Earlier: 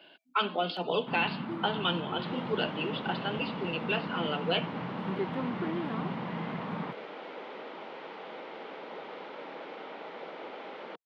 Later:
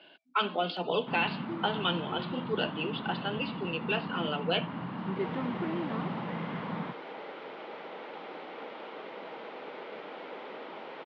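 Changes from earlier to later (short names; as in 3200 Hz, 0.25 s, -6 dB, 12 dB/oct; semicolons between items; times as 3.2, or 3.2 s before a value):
second sound: entry +2.95 s; master: add LPF 5700 Hz 12 dB/oct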